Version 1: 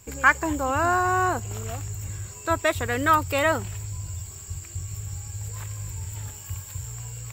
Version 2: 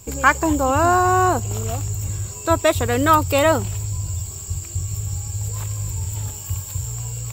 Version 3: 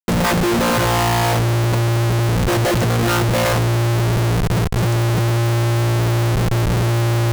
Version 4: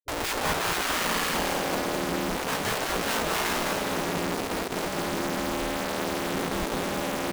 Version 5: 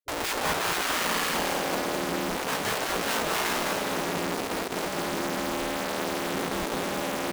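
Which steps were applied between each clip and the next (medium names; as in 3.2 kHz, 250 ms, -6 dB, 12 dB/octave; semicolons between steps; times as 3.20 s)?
peaking EQ 1.8 kHz -8.5 dB 1 oct; trim +8 dB
vocoder on a held chord bare fifth, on A#2; Schmitt trigger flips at -36 dBFS; trim +6 dB
frequency-shifting echo 206 ms, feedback 57%, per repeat -78 Hz, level -3 dB; spectral gate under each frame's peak -10 dB weak; trim -7.5 dB
bass shelf 120 Hz -7.5 dB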